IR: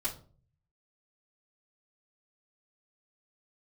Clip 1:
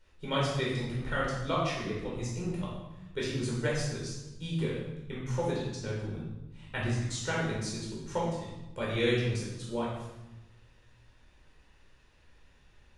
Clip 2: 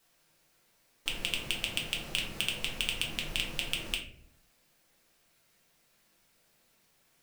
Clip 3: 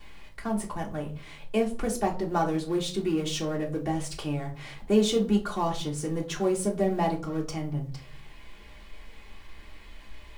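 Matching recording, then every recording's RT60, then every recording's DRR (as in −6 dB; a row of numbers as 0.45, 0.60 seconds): 3; 1.0, 0.65, 0.45 seconds; −5.5, −1.5, −10.0 decibels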